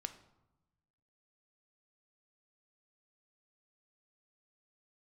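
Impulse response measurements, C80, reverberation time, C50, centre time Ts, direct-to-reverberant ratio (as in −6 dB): 15.5 dB, 1.0 s, 12.5 dB, 8 ms, 8.5 dB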